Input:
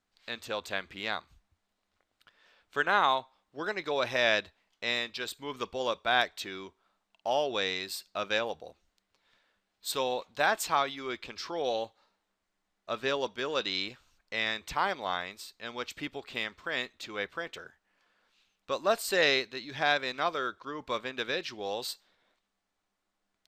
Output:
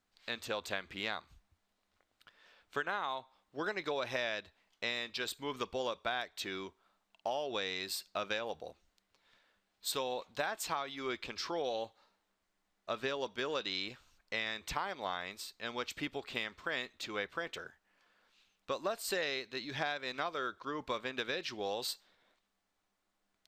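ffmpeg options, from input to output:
-af "acompressor=threshold=-32dB:ratio=10"

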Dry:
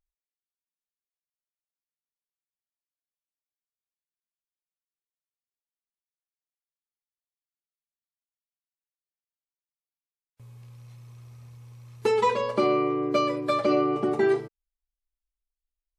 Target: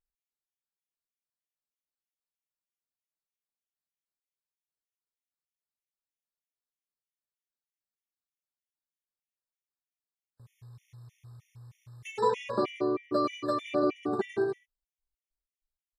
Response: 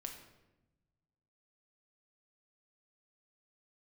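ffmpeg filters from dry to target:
-af "aecho=1:1:99.13|180.8:0.447|0.501,afftfilt=real='re*gt(sin(2*PI*3.2*pts/sr)*(1-2*mod(floor(b*sr/1024/1800),2)),0)':imag='im*gt(sin(2*PI*3.2*pts/sr)*(1-2*mod(floor(b*sr/1024/1800),2)),0)':win_size=1024:overlap=0.75,volume=-4.5dB"

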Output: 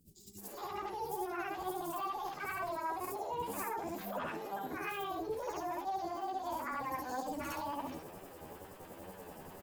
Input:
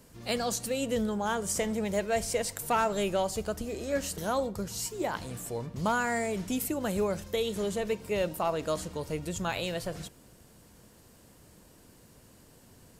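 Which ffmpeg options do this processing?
-filter_complex "[0:a]afftfilt=real='re':imag='-im':win_size=8192:overlap=0.75,acrossover=split=1900[a][b];[b]aeval=exprs='(mod(53.1*val(0)+1,2)-1)/53.1':c=same[c];[a][c]amix=inputs=2:normalize=0,equalizer=f=330:w=0.43:g=7,areverse,acompressor=threshold=-40dB:ratio=12,areverse,alimiter=level_in=15dB:limit=-24dB:level=0:latency=1:release=75,volume=-15dB,acontrast=65,flanger=delay=17.5:depth=3.8:speed=1.6,asetrate=55563,aresample=44100,atempo=0.793701,acrossover=split=710[d][e];[d]aeval=exprs='val(0)*(1-0.5/2+0.5/2*cos(2*PI*7.8*n/s))':c=same[f];[e]aeval=exprs='val(0)*(1-0.5/2-0.5/2*cos(2*PI*7.8*n/s))':c=same[g];[f][g]amix=inputs=2:normalize=0,acrossover=split=180|3400[h][i][j];[j]adelay=60[k];[i]adelay=630[l];[h][l][k]amix=inputs=3:normalize=0,agate=range=-33dB:threshold=-56dB:ratio=3:detection=peak,asetrate=59535,aresample=44100,volume=7dB"

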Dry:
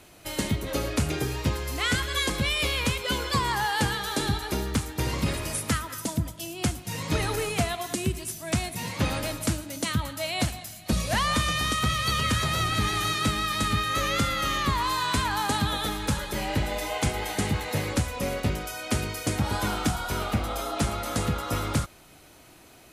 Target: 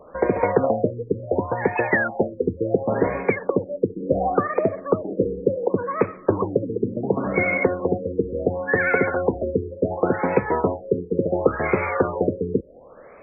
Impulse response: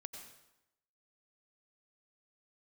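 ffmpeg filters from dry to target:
-af "asetrate=76440,aresample=44100,equalizer=f=125:t=o:w=1:g=-6,equalizer=f=500:t=o:w=1:g=11,equalizer=f=2k:t=o:w=1:g=4,afftfilt=real='re*lt(b*sr/1024,490*pow(2600/490,0.5+0.5*sin(2*PI*0.7*pts/sr)))':imag='im*lt(b*sr/1024,490*pow(2600/490,0.5+0.5*sin(2*PI*0.7*pts/sr)))':win_size=1024:overlap=0.75,volume=3.5dB"

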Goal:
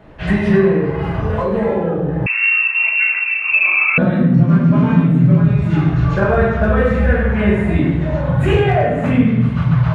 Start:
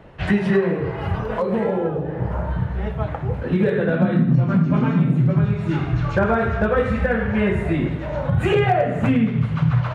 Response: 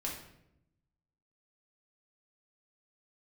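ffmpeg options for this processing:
-filter_complex "[1:a]atrim=start_sample=2205[a];[0:a][a]afir=irnorm=-1:irlink=0,asettb=1/sr,asplit=3[b][c][d];[b]atrim=end=2.264[e];[c]atrim=start=2.26:end=3.98,asetpts=PTS-STARTPTS,afade=t=in:d=0.004:c=qsin,afade=t=out:st=1.716:d=0.004:c=qsin,lowpass=f=2.4k:t=q:w=0.5098,lowpass=f=2.4k:t=q:w=0.6013,lowpass=f=2.4k:t=q:w=0.9,lowpass=f=2.4k:t=q:w=2.563,afreqshift=-2800[f];[d]atrim=start=3.976[g];[e][f]acrossfade=d=0.004:c1=hsin:c2=qsin[h];[h][g]acrossfade=d=0.004:c1=qsin:c2=hsin,volume=2dB"

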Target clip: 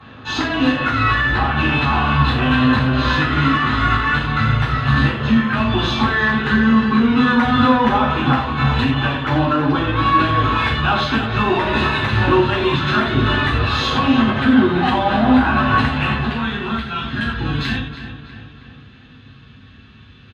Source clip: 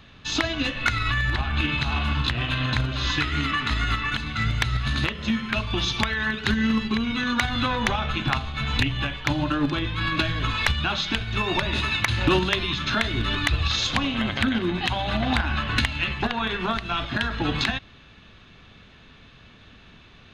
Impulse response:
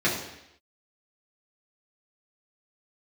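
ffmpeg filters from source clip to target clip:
-filter_complex "[0:a]asetnsamples=n=441:p=0,asendcmd='16.16 equalizer g -5.5',equalizer=f=710:t=o:w=2.5:g=11.5,alimiter=limit=-10.5dB:level=0:latency=1:release=104,acontrast=48,aeval=exprs='0.531*(cos(1*acos(clip(val(0)/0.531,-1,1)))-cos(1*PI/2))+0.015*(cos(5*acos(clip(val(0)/0.531,-1,1)))-cos(5*PI/2))':c=same,asplit=2[a][b];[b]adelay=321,lowpass=f=4.2k:p=1,volume=-11dB,asplit=2[c][d];[d]adelay=321,lowpass=f=4.2k:p=1,volume=0.53,asplit=2[e][f];[f]adelay=321,lowpass=f=4.2k:p=1,volume=0.53,asplit=2[g][h];[h]adelay=321,lowpass=f=4.2k:p=1,volume=0.53,asplit=2[i][j];[j]adelay=321,lowpass=f=4.2k:p=1,volume=0.53,asplit=2[k][l];[l]adelay=321,lowpass=f=4.2k:p=1,volume=0.53[m];[a][c][e][g][i][k][m]amix=inputs=7:normalize=0[n];[1:a]atrim=start_sample=2205,afade=t=out:st=0.13:d=0.01,atrim=end_sample=6174,asetrate=31752,aresample=44100[o];[n][o]afir=irnorm=-1:irlink=0,volume=-18dB"

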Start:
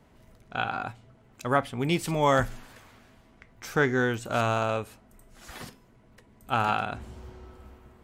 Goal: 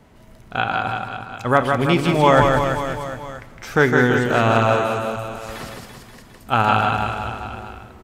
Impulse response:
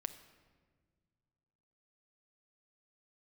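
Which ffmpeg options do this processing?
-filter_complex "[0:a]aecho=1:1:160|336|529.6|742.6|976.8:0.631|0.398|0.251|0.158|0.1,acrossover=split=4500[a][b];[b]acompressor=threshold=-49dB:ratio=4:attack=1:release=60[c];[a][c]amix=inputs=2:normalize=0,asplit=2[d][e];[1:a]atrim=start_sample=2205,asetrate=29988,aresample=44100[f];[e][f]afir=irnorm=-1:irlink=0,volume=0dB[g];[d][g]amix=inputs=2:normalize=0,volume=2dB"

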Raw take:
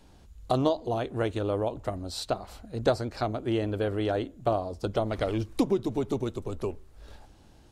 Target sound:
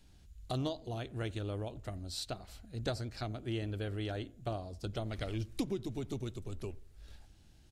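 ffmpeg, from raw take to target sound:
-filter_complex "[0:a]equalizer=f=250:t=o:w=1:g=-4,equalizer=f=500:t=o:w=1:g=-8,equalizer=f=1k:t=o:w=1:g=-10,asplit=2[a][b];[b]adelay=88,lowpass=f=920:p=1,volume=-21.5dB,asplit=2[c][d];[d]adelay=88,lowpass=f=920:p=1,volume=0.46,asplit=2[e][f];[f]adelay=88,lowpass=f=920:p=1,volume=0.46[g];[a][c][e][g]amix=inputs=4:normalize=0,volume=-4dB"

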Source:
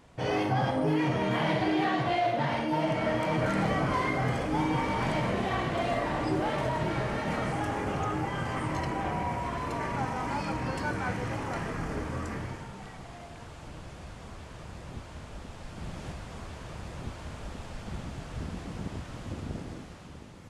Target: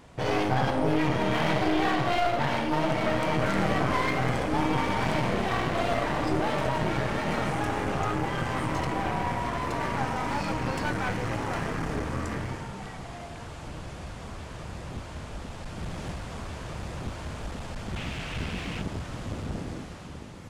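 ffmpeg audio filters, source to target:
-filter_complex "[0:a]asettb=1/sr,asplit=3[a][b][c];[a]atrim=end=17.964[d];[b]atrim=start=17.96:end=18.82,asetpts=PTS-STARTPTS,afade=t=in:d=0.004:c=qsin,afade=t=out:st=0.856:d=0.004:c=qsin,equalizer=f=2.6k:t=o:w=1.1:g=12.5[e];[c]atrim=start=18.816[f];[d][e]acrossfade=d=0.004:c1=hsin:c2=qsin[g];[g][f]acrossfade=d=0.004:c1=qsin:c2=hsin,aeval=exprs='clip(val(0),-1,0.0141)':c=same,volume=5dB"

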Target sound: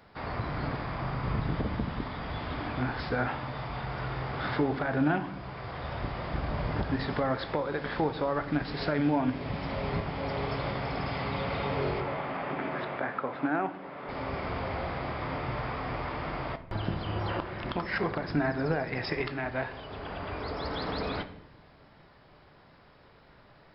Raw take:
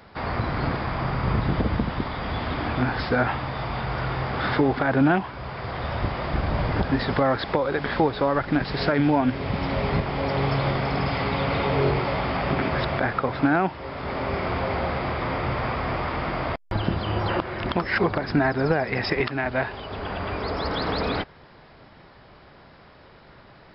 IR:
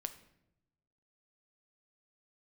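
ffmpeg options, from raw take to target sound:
-filter_complex "[0:a]asettb=1/sr,asplit=3[a][b][c];[a]atrim=end=12.004[d];[b]atrim=start=12:end=14.09,asetpts=PTS-STARTPTS,afade=t=in:d=0.004:c=qsin,afade=t=out:st=2.086:d=0.004:c=qsin,highpass=220,lowpass=2.7k[e];[c]atrim=start=14.086[f];[d][e]acrossfade=d=0.004:c1=hsin:c2=qsin[g];[g][f]acrossfade=d=0.004:c1=qsin:c2=hsin[h];[1:a]atrim=start_sample=2205[i];[h][i]afir=irnorm=-1:irlink=0,volume=-5.5dB"

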